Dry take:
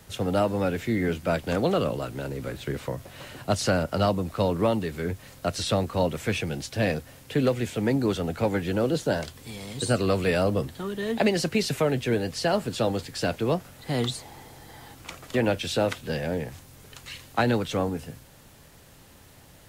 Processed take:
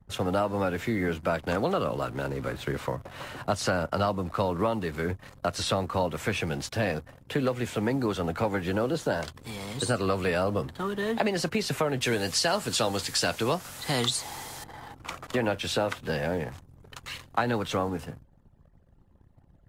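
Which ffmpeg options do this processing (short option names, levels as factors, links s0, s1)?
-filter_complex "[0:a]asettb=1/sr,asplit=3[s0][s1][s2];[s0]atrim=end=12.014[s3];[s1]atrim=start=12.01:end=14.64,asetpts=PTS-STARTPTS,afade=t=in:d=0.004:c=qsin,afade=t=out:st=2.626:d=0.004:c=qsin,equalizer=f=7500:t=o:w=2.9:g=12.5[s4];[s2]atrim=start=14.636[s5];[s3][s4]acrossfade=d=0.004:c1=hsin:c2=qsin[s6];[s6][s5]acrossfade=d=0.004:c1=qsin:c2=hsin,anlmdn=0.0251,equalizer=f=1100:w=1.1:g=7.5,acompressor=threshold=0.0562:ratio=2.5"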